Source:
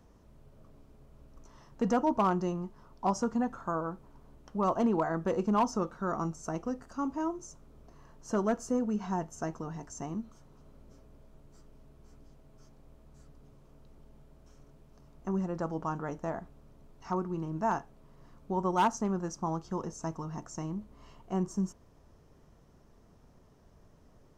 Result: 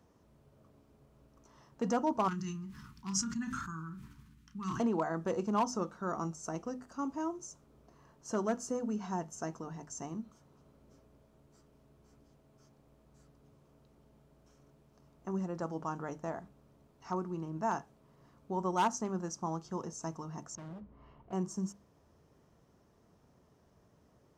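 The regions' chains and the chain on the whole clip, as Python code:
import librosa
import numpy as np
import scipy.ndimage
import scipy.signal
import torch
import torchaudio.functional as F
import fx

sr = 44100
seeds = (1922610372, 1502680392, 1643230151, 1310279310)

y = fx.chain(x, sr, fx.cheby1_bandstop(low_hz=200.0, high_hz=1700.0, order=2),
    fx.doubler(ms=31.0, db=-9.5),
    fx.sustainer(db_per_s=25.0), at=(2.28, 4.8))
y = fx.chain(y, sr, fx.lowpass(hz=2100.0, slope=12),
    fx.low_shelf(hz=100.0, db=9.5),
    fx.clip_hard(threshold_db=-39.5), at=(20.55, 21.33))
y = scipy.signal.sosfilt(scipy.signal.butter(2, 74.0, 'highpass', fs=sr, output='sos'), y)
y = fx.hum_notches(y, sr, base_hz=50, count=5)
y = fx.dynamic_eq(y, sr, hz=6600.0, q=0.76, threshold_db=-58.0, ratio=4.0, max_db=5)
y = F.gain(torch.from_numpy(y), -3.5).numpy()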